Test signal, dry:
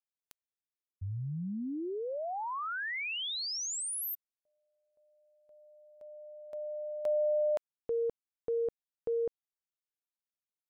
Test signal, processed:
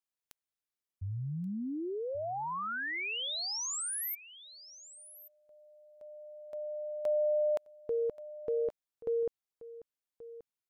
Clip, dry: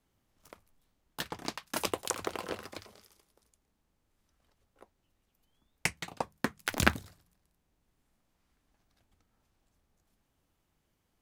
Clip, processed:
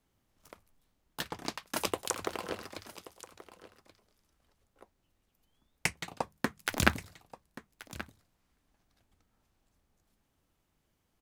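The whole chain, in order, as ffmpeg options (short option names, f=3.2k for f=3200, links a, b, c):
-af "aecho=1:1:1130:0.15"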